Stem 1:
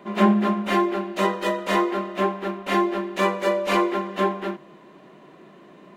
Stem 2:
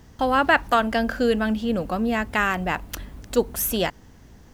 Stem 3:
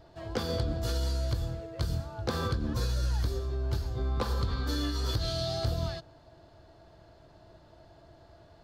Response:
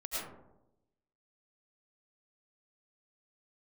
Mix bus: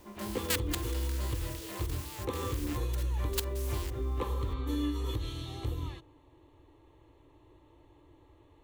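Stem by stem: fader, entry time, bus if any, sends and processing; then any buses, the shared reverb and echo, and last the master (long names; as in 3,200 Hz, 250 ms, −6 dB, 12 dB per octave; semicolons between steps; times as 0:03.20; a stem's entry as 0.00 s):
−12.5 dB, 0.00 s, no send, automatic ducking −12 dB, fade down 0.25 s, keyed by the second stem
−10.5 dB, 0.00 s, no send, compressing power law on the bin magnitudes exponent 0.22; Bessel high-pass filter 1,400 Hz; output level in coarse steps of 18 dB
−1.5 dB, 0.00 s, no send, parametric band 280 Hz +9 dB 0.39 octaves; phaser with its sweep stopped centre 1,000 Hz, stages 8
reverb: not used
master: no processing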